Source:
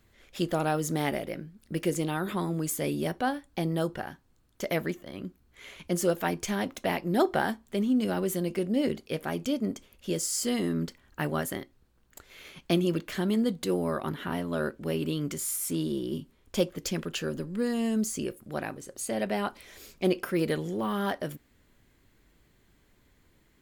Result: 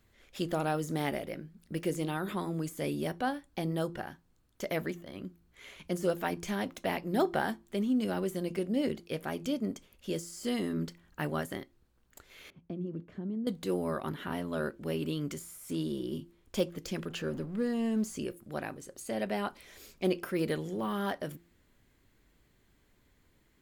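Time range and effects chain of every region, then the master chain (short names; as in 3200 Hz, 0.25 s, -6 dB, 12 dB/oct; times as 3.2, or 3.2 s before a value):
12.5–13.47 compressor 2:1, threshold -30 dBFS + band-pass 150 Hz, Q 0.65
17.09–18.17 G.711 law mismatch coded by mu + high shelf 3500 Hz -8.5 dB
whole clip: de-hum 171 Hz, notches 2; de-esser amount 70%; gain -3.5 dB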